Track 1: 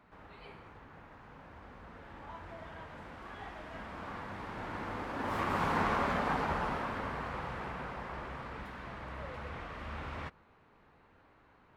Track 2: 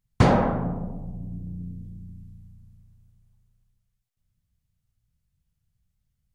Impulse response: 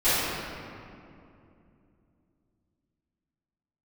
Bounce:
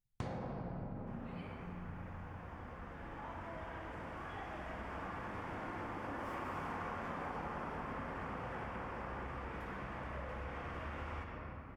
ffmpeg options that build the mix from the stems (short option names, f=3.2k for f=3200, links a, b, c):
-filter_complex "[0:a]equalizer=f=4k:w=4:g=-10.5,adelay=950,volume=-1.5dB,asplit=2[a][b];[b]volume=-18dB[c];[1:a]volume=-13.5dB,asplit=3[d][e][f];[d]atrim=end=0.82,asetpts=PTS-STARTPTS,afade=t=out:st=0.816:d=0.004:c=hsin[g];[e]atrim=start=0.82:end=1.62,asetpts=PTS-STARTPTS,volume=0[h];[f]atrim=start=1.62,asetpts=PTS-STARTPTS,afade=t=in:d=0.004:c=hsin[i];[g][h][i]concat=n=3:v=0:a=1,asplit=2[j][k];[k]volume=-18dB[l];[2:a]atrim=start_sample=2205[m];[c][l]amix=inputs=2:normalize=0[n];[n][m]afir=irnorm=-1:irlink=0[o];[a][j][o]amix=inputs=3:normalize=0,acompressor=threshold=-40dB:ratio=6"